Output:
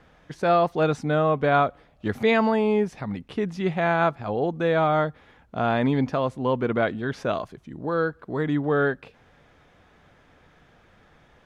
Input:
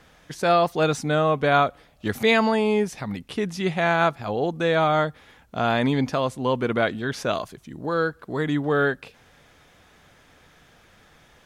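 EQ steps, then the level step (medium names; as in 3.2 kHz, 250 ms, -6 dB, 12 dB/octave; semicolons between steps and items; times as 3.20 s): low-pass 1.7 kHz 6 dB/octave; 0.0 dB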